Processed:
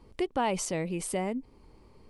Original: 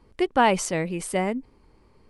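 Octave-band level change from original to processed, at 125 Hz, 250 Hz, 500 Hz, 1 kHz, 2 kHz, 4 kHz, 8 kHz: -5.0 dB, -6.0 dB, -7.0 dB, -9.5 dB, -11.0 dB, -7.5 dB, -3.5 dB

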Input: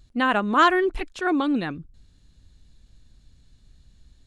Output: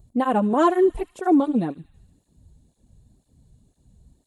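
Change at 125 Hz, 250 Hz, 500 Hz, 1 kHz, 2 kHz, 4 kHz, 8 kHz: +4.0 dB, +4.0 dB, +4.5 dB, -1.5 dB, -11.5 dB, under -10 dB, no reading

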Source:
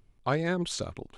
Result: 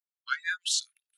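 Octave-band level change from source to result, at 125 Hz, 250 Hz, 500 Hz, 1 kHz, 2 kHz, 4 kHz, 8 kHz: under -40 dB, under -40 dB, under -40 dB, -5.0 dB, +5.5 dB, +7.0 dB, +8.5 dB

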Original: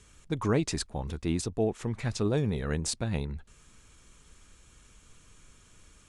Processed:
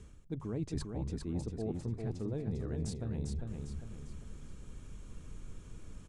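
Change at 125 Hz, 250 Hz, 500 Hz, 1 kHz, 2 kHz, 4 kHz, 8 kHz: -5.0 dB, -7.0 dB, -10.0 dB, -14.0 dB, -17.0 dB, -15.0 dB, -14.5 dB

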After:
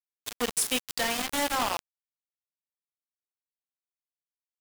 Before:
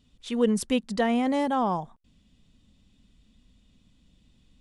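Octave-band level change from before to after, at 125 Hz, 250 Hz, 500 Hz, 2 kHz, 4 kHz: -12.0 dB, -12.0 dB, -7.5 dB, +4.0 dB, +7.0 dB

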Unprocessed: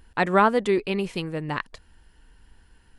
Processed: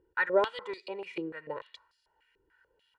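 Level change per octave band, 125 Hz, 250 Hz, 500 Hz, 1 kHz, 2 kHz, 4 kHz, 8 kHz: -23.0 dB, -14.5 dB, -7.0 dB, -12.5 dB, -5.0 dB, -8.0 dB, under -15 dB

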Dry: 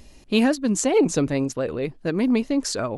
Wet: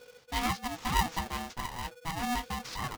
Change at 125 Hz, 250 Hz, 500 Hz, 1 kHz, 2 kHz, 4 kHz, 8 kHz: -8.5 dB, -18.0 dB, -23.0 dB, +1.5 dB, -4.5 dB, -4.5 dB, -11.5 dB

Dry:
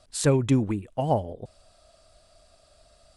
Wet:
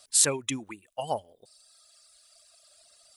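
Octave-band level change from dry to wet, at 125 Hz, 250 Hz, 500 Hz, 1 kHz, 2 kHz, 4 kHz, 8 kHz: -17.5 dB, -13.0 dB, -8.0 dB, -4.5 dB, +1.0 dB, +6.5 dB, +10.5 dB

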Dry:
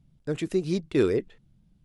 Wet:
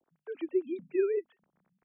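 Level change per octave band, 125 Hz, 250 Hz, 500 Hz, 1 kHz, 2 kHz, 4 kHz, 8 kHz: under -30 dB, -8.0 dB, -4.0 dB, under -10 dB, -10.0 dB, under -20 dB, under -30 dB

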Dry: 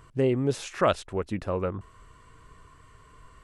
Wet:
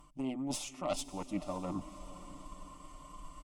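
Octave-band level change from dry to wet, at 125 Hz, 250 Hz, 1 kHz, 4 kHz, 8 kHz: -14.5 dB, -7.0 dB, -10.0 dB, -5.5 dB, +1.0 dB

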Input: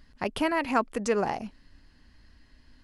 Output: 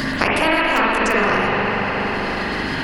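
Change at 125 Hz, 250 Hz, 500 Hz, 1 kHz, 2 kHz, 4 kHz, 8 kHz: +16.0 dB, +9.5 dB, +9.5 dB, +12.0 dB, +18.5 dB, +17.0 dB, +8.0 dB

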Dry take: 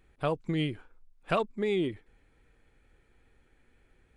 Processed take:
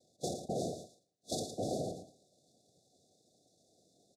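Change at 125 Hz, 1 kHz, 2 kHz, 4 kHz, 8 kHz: -9.0 dB, -8.0 dB, under -40 dB, -4.5 dB, no reading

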